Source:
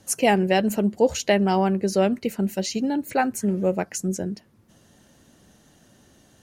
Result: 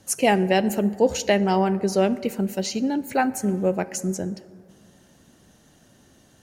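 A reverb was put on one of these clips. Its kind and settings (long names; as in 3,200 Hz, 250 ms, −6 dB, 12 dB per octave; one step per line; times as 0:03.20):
dense smooth reverb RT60 2.1 s, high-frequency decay 0.4×, DRR 15 dB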